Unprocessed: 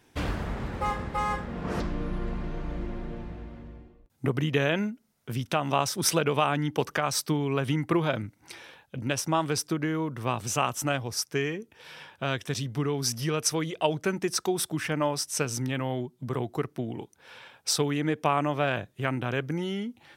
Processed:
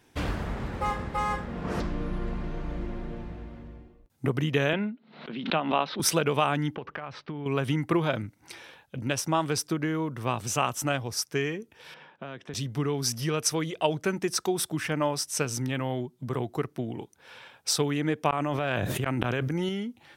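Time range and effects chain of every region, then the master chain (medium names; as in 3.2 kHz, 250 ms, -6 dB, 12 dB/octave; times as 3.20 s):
4.73–6.00 s: Chebyshev band-pass 160–4100 Hz, order 5 + swell ahead of each attack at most 90 dB/s
6.75–7.46 s: low-pass 2.9 kHz 24 dB/octave + compression 10:1, threshold -31 dBFS
11.94–12.54 s: high-pass 150 Hz 24 dB/octave + compression 4:1, threshold -32 dBFS + tape spacing loss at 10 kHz 26 dB
18.30–19.69 s: high-pass 46 Hz + inverted gate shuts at -19 dBFS, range -29 dB + level flattener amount 100%
whole clip: none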